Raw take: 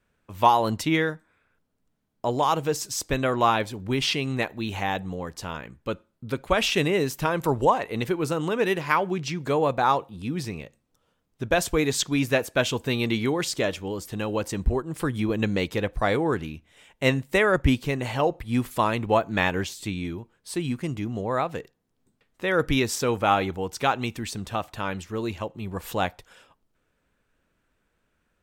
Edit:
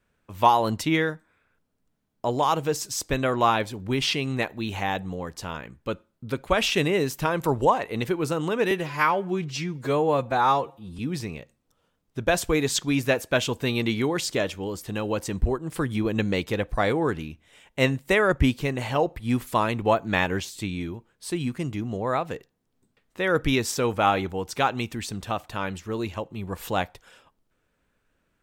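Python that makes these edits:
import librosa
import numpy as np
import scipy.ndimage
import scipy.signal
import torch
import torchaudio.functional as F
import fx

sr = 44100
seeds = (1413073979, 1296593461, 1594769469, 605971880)

y = fx.edit(x, sr, fx.stretch_span(start_s=8.71, length_s=1.52, factor=1.5), tone=tone)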